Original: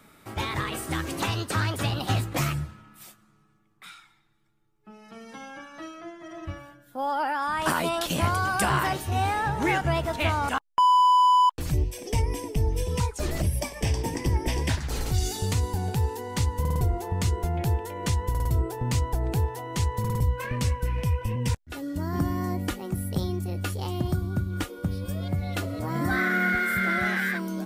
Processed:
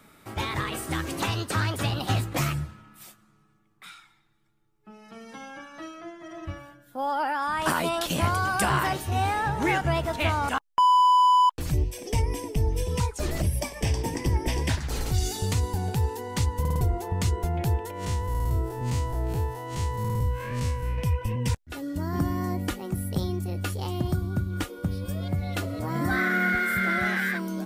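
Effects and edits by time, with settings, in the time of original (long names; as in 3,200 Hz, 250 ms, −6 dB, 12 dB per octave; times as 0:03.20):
0:17.91–0:20.98: spectrum smeared in time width 106 ms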